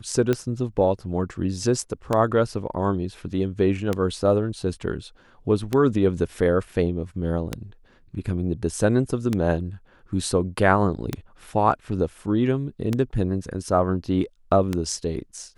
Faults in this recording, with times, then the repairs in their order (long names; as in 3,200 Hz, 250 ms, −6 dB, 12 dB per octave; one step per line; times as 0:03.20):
scratch tick 33 1/3 rpm −10 dBFS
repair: click removal